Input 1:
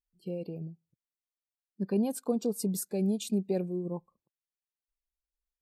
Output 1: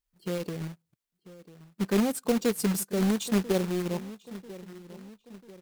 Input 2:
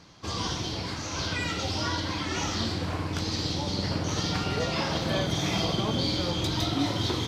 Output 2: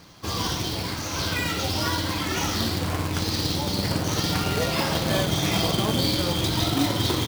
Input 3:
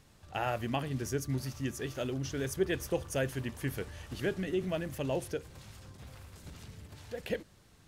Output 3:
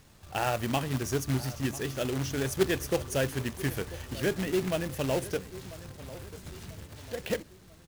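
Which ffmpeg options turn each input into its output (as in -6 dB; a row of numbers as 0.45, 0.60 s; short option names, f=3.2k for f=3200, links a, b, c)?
-filter_complex "[0:a]asplit=2[a][b];[b]adelay=992,lowpass=f=1.8k:p=1,volume=-16.5dB,asplit=2[c][d];[d]adelay=992,lowpass=f=1.8k:p=1,volume=0.48,asplit=2[e][f];[f]adelay=992,lowpass=f=1.8k:p=1,volume=0.48,asplit=2[g][h];[h]adelay=992,lowpass=f=1.8k:p=1,volume=0.48[i];[a][c][e][g][i]amix=inputs=5:normalize=0,acrusher=bits=2:mode=log:mix=0:aa=0.000001,volume=3.5dB"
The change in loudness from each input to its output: +4.0, +4.0, +4.5 LU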